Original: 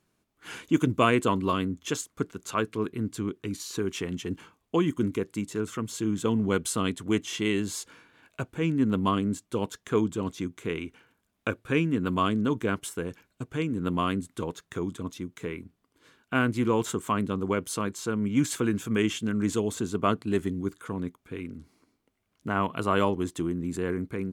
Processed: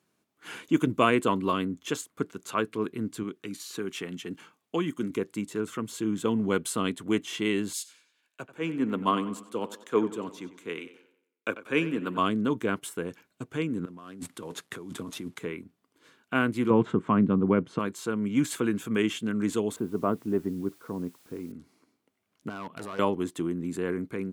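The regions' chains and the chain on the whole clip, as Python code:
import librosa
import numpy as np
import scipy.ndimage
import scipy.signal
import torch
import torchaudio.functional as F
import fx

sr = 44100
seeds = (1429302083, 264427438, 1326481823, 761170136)

y = fx.chain(x, sr, fx.highpass(hz=140.0, slope=12),
    fx.peak_eq(hz=370.0, db=-4.0, octaves=2.0),
    fx.notch(hz=1000.0, q=11.0), at=(3.23, 5.1))
y = fx.chain(y, sr, fx.highpass(hz=310.0, slope=6),
    fx.echo_tape(ms=94, feedback_pct=64, wet_db=-12, lp_hz=4200.0, drive_db=13.0, wow_cents=39),
    fx.band_widen(depth_pct=70), at=(7.73, 12.18))
y = fx.chain(y, sr, fx.cvsd(bps=64000),
    fx.over_compress(threshold_db=-38.0, ratio=-1.0),
    fx.band_widen(depth_pct=40), at=(13.85, 15.39))
y = fx.chain(y, sr, fx.lowpass(hz=2100.0, slope=12),
    fx.peak_eq(hz=150.0, db=10.5, octaves=2.0), at=(16.7, 17.79))
y = fx.chain(y, sr, fx.lowpass(hz=1000.0, slope=12),
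    fx.quant_dither(seeds[0], bits=10, dither='triangular'), at=(19.76, 21.52))
y = fx.chain(y, sr, fx.level_steps(step_db=17),
    fx.overload_stage(gain_db=33.0), at=(22.49, 22.99))
y = scipy.signal.sosfilt(scipy.signal.butter(2, 150.0, 'highpass', fs=sr, output='sos'), y)
y = fx.dynamic_eq(y, sr, hz=6000.0, q=1.5, threshold_db=-52.0, ratio=4.0, max_db=-5)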